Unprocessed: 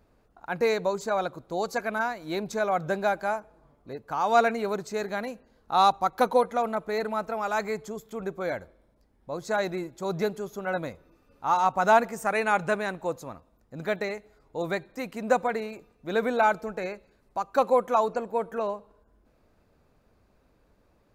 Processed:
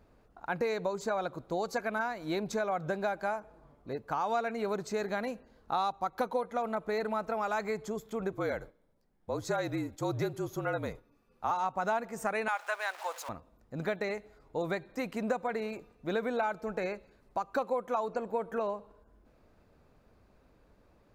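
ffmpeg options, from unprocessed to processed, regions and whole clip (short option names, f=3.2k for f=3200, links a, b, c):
-filter_complex "[0:a]asettb=1/sr,asplit=3[a][b][c];[a]atrim=end=8.324[d];[b]atrim=start=8.32:end=11.51,asetpts=PTS-STARTPTS,afade=t=in:d=0.004:c=qsin,afade=t=out:st=3.186:d=0.004:c=qsin,agate=range=-8dB:threshold=-55dB:ratio=16:release=100:detection=peak,highshelf=f=8.6k:g=5.5,afreqshift=-45[e];[c]atrim=start=11.506[f];[d][e]acrossfade=d=0.004:c1=hsin:c2=qsin[g];[g][f]acrossfade=d=0.004:c1=qsin:c2=hsin,asettb=1/sr,asplit=3[h][i][j];[h]atrim=end=12.484[k];[i]atrim=start=12.48:end=13.29,asetpts=PTS-STARTPTS,afade=t=in:d=0.004:c=qsin,afade=t=out:st=0.806:d=0.004:c=qsin,aeval=exprs='val(0)+0.5*0.0126*sgn(val(0))':c=same,highpass=f=730:w=0.5412,highpass=f=730:w=1.3066[l];[j]atrim=start=13.286[m];[k][l]acrossfade=d=0.004:c1=hsin:c2=qsin[n];[n][m]acrossfade=d=0.004:c1=qsin:c2=hsin,highshelf=f=6k:g=-5,acompressor=threshold=-30dB:ratio=5,volume=1dB"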